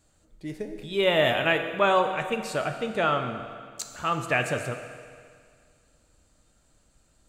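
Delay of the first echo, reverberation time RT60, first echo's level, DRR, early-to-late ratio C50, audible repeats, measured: no echo, 2.0 s, no echo, 6.0 dB, 7.5 dB, no echo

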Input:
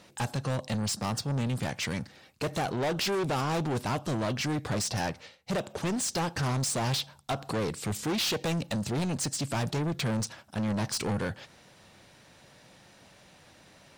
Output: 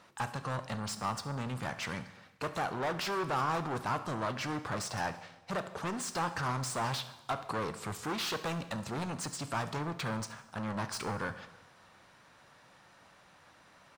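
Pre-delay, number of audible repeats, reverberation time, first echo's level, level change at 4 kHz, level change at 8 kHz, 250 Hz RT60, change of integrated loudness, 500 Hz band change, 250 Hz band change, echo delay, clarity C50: 6 ms, 2, 1.1 s, -19.0 dB, -7.0 dB, -8.0 dB, 1.1 s, -5.0 dB, -5.5 dB, -7.5 dB, 70 ms, 12.5 dB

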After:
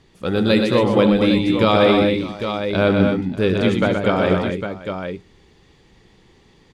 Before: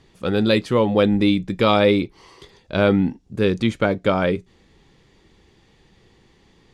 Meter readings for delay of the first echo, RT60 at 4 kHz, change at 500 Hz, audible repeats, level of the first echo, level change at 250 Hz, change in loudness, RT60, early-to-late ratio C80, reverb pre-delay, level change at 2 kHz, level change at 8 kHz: 72 ms, no reverb, +2.5 dB, 6, -14.0 dB, +2.5 dB, +1.5 dB, no reverb, no reverb, no reverb, +2.5 dB, no reading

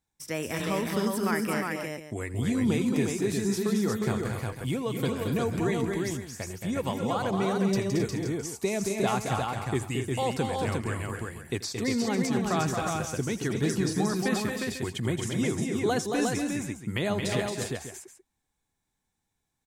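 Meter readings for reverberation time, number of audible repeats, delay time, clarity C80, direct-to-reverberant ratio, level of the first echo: no reverb, 5, 83 ms, no reverb, no reverb, -18.5 dB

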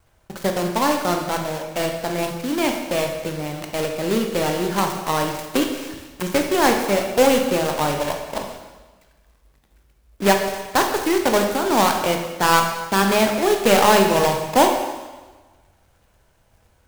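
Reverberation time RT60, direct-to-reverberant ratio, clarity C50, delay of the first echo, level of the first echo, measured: 1.3 s, 3.0 dB, 5.0 dB, no echo, no echo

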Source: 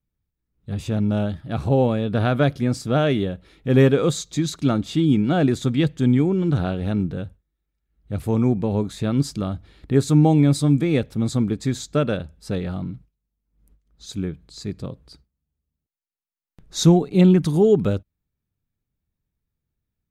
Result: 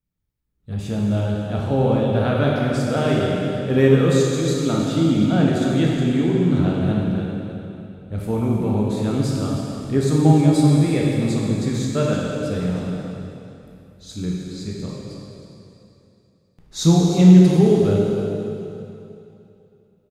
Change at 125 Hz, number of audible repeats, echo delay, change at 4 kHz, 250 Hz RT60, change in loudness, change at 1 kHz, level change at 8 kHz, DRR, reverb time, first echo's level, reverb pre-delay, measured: +2.5 dB, 1, 315 ms, +1.5 dB, 2.8 s, +2.0 dB, +1.5 dB, +1.5 dB, -4.0 dB, 2.8 s, -11.5 dB, 6 ms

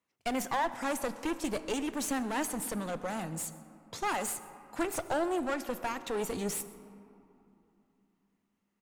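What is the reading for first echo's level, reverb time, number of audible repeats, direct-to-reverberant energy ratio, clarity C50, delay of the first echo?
-23.0 dB, 3.0 s, 1, 11.5 dB, 13.0 dB, 128 ms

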